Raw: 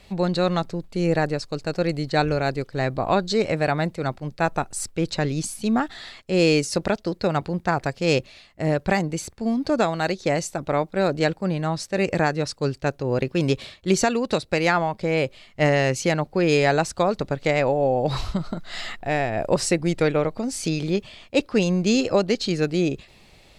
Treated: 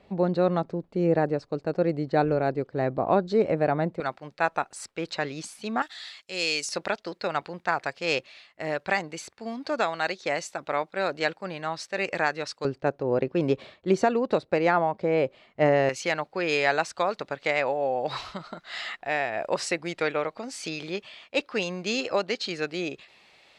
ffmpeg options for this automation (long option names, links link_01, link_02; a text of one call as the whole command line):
ffmpeg -i in.wav -af "asetnsamples=nb_out_samples=441:pad=0,asendcmd='4 bandpass f 1500;5.82 bandpass f 4600;6.69 bandpass f 1900;12.65 bandpass f 590;15.89 bandpass f 1800',bandpass=frequency=430:width_type=q:width=0.55:csg=0" out.wav